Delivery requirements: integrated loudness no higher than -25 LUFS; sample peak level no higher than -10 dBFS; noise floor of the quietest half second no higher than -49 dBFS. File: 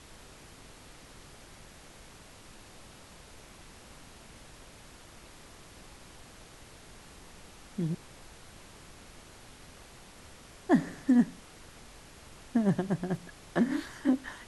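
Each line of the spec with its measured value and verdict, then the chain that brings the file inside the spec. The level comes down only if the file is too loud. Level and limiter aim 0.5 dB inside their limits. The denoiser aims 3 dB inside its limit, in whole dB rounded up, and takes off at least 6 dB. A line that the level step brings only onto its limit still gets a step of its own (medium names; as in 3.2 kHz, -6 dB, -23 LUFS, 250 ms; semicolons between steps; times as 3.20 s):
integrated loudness -30.5 LUFS: pass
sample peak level -13.0 dBFS: pass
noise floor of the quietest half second -52 dBFS: pass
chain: none needed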